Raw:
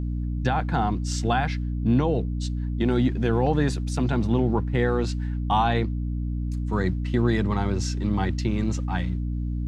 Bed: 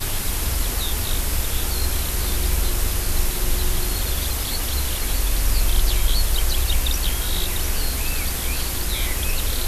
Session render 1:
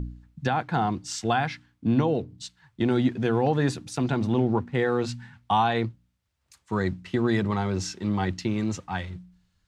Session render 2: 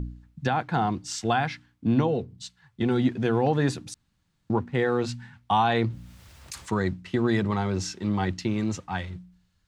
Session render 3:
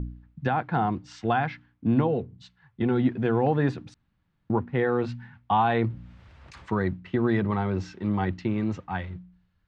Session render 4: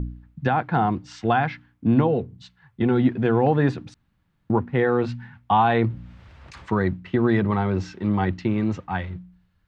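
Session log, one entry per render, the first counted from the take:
de-hum 60 Hz, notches 5
2.07–3.03 notch comb 310 Hz; 3.94–4.5 room tone; 5.64–6.74 fast leveller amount 50%
LPF 2400 Hz 12 dB/oct
gain +4 dB

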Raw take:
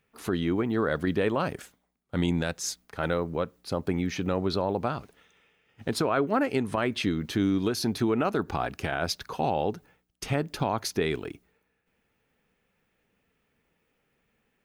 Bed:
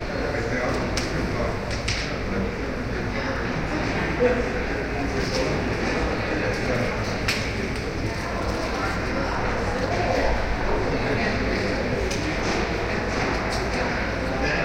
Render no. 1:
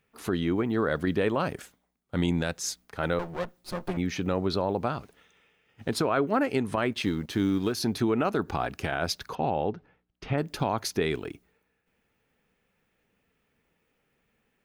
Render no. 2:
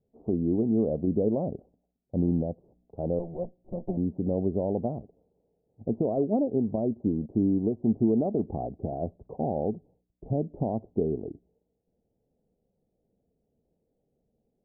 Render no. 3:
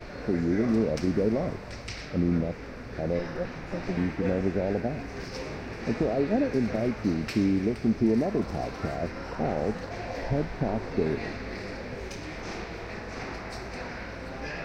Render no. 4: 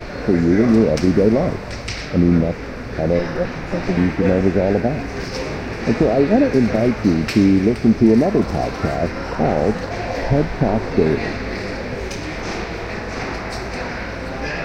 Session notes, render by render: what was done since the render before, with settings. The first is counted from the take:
3.19–3.97 minimum comb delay 5.6 ms; 6.92–7.8 G.711 law mismatch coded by A; 9.35–10.38 air absorption 260 m
steep low-pass 720 Hz 48 dB/oct; dynamic EQ 220 Hz, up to +6 dB, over -46 dBFS, Q 5.3
add bed -12.5 dB
gain +11 dB

